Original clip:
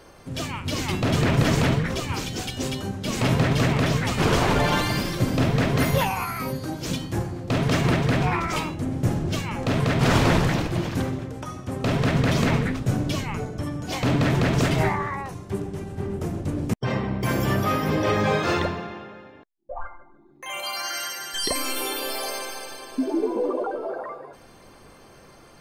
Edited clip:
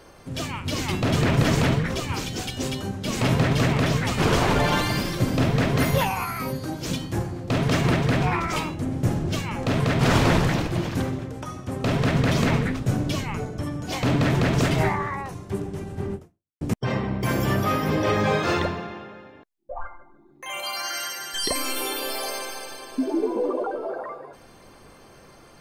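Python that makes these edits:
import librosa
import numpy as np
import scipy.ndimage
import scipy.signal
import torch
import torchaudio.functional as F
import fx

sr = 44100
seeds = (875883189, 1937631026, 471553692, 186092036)

y = fx.edit(x, sr, fx.fade_out_span(start_s=16.14, length_s=0.47, curve='exp'), tone=tone)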